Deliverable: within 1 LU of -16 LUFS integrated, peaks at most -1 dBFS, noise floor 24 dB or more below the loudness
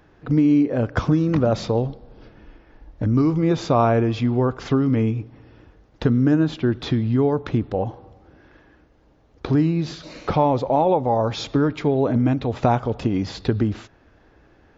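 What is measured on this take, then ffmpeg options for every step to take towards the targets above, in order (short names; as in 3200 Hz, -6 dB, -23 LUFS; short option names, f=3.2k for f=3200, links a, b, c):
loudness -21.0 LUFS; peak -4.5 dBFS; loudness target -16.0 LUFS
-> -af "volume=5dB,alimiter=limit=-1dB:level=0:latency=1"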